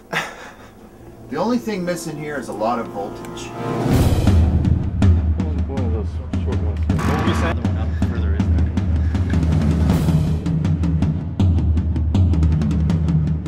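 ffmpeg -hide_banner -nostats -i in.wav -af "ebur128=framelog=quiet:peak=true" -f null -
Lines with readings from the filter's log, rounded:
Integrated loudness:
  I:         -19.6 LUFS
  Threshold: -29.9 LUFS
Loudness range:
  LRA:         4.7 LU
  Threshold: -39.8 LUFS
  LRA low:   -23.2 LUFS
  LRA high:  -18.5 LUFS
True peak:
  Peak:       -2.7 dBFS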